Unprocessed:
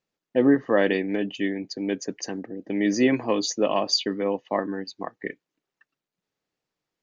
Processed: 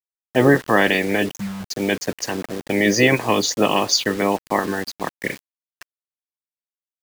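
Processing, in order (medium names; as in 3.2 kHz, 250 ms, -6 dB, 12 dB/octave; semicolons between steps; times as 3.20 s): spectral peaks clipped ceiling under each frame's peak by 15 dB; dynamic bell 110 Hz, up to +5 dB, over -48 dBFS, Q 6.3; in parallel at -2 dB: peak limiter -15 dBFS, peak gain reduction 8.5 dB; on the sum: gate -45 dBFS, range -11 dB; reverse; upward compressor, threshold -27 dBFS; reverse; spectral selection erased 1.32–1.65 s, 230–5600 Hz; bit crusher 6-bit; trim +1.5 dB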